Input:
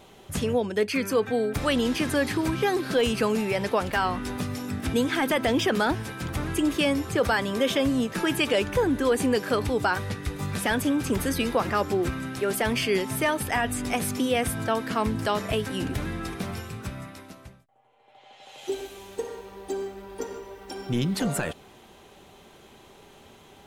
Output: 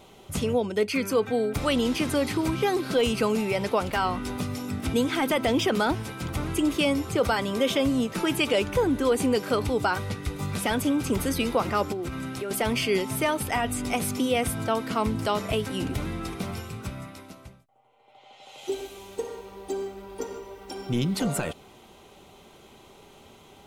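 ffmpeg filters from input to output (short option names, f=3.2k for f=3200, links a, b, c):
-filter_complex "[0:a]asettb=1/sr,asplit=3[a][b][c];[a]atrim=end=11.924[d];[b]atrim=start=11.92:end=12.51,asetpts=PTS-STARTPTS,afade=t=in:d=0.004:c=qsin,afade=t=out:st=0.586:d=0.004:c=qsin,acompressor=threshold=-28dB:ratio=6:attack=3.2:release=140:knee=1:detection=peak[e];[c]atrim=start=12.506[f];[d][e]acrossfade=d=0.004:c1=hsin:c2=qsin[g];[g][f]acrossfade=d=0.004:c1=qsin:c2=hsin,bandreject=f=1.7k:w=6"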